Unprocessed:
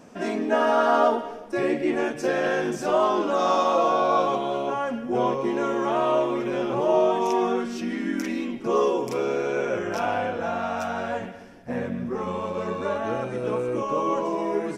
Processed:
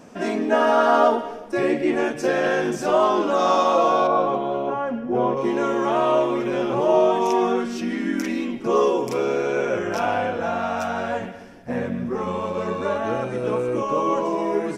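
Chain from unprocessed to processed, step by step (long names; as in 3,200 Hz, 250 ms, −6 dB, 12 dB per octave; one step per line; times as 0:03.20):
0:04.07–0:05.37: low-pass filter 1,300 Hz 6 dB per octave
level +3 dB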